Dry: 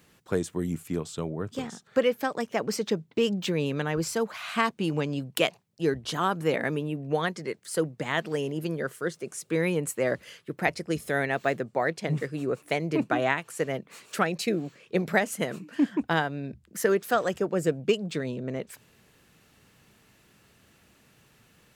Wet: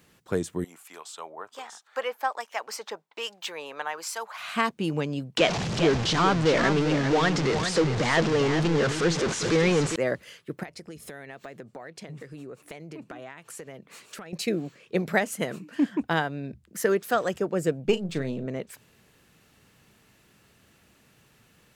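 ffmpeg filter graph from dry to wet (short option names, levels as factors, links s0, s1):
-filter_complex "[0:a]asettb=1/sr,asplit=3[s0][s1][s2];[s0]atrim=end=0.644[s3];[s1]atrim=start=0.64:end=4.38,asetpts=PTS-STARTPTS,afade=t=in:d=0.004:c=qsin,afade=t=out:st=3.736:d=0.004:c=qsin,highpass=f=870:t=q:w=2.2,acrossover=split=1600[s4][s5];[s4]aeval=exprs='val(0)*(1-0.5/2+0.5/2*cos(2*PI*1.3*n/s))':c=same[s6];[s5]aeval=exprs='val(0)*(1-0.5/2-0.5/2*cos(2*PI*1.3*n/s))':c=same[s7];[s6][s7]amix=inputs=2:normalize=0[s8];[s2]atrim=start=4.376[s9];[s3][s8]acrossfade=d=0.004:c1=hsin:c2=qsin[s10];[s10][s9]acrossfade=d=0.004:c1=qsin:c2=hsin,asettb=1/sr,asplit=3[s11][s12][s13];[s11]atrim=end=5.374[s14];[s12]atrim=start=5.37:end=9.96,asetpts=PTS-STARTPTS,afade=t=in:d=0.004:c=qsin,afade=t=out:st=4.586:d=0.004:c=qsin,aeval=exprs='val(0)+0.5*0.0794*sgn(val(0))':c=same,lowpass=f=6500:w=0.5412,lowpass=f=6500:w=1.3066,aecho=1:1:401:0.398,atrim=end_sample=202419[s15];[s13]atrim=start=9.956[s16];[s14][s15]acrossfade=d=0.004:c1=hsin:c2=qsin[s17];[s17][s16]acrossfade=d=0.004:c1=qsin:c2=hsin,asettb=1/sr,asplit=3[s18][s19][s20];[s18]atrim=end=10.634[s21];[s19]atrim=start=10.63:end=14.33,asetpts=PTS-STARTPTS,afade=t=in:d=0.004:c=qsin,afade=t=out:st=3.696:d=0.004:c=qsin,lowpass=f=4000:p=1,aemphasis=mode=production:type=cd,acompressor=threshold=0.0141:ratio=10:attack=3.2:release=140:knee=1:detection=peak[s22];[s20]atrim=start=14.326[s23];[s21][s22]acrossfade=d=0.004:c1=hsin:c2=qsin[s24];[s24][s23]acrossfade=d=0.004:c1=qsin:c2=hsin,asettb=1/sr,asplit=3[s25][s26][s27];[s25]atrim=end=17.854[s28];[s26]atrim=start=17.85:end=18.46,asetpts=PTS-STARTPTS,afade=t=in:d=0.004:c=qsin,afade=t=out:st=0.606:d=0.004:c=qsin,aeval=exprs='if(lt(val(0),0),0.708*val(0),val(0))':c=same,lowshelf=f=330:g=4,asplit=2[s29][s30];[s30]adelay=36,volume=0.266[s31];[s29][s31]amix=inputs=2:normalize=0,atrim=end_sample=26901[s32];[s27]atrim=start=18.456[s33];[s28][s32]acrossfade=d=0.004:c1=hsin:c2=qsin[s34];[s34][s33]acrossfade=d=0.004:c1=qsin:c2=hsin"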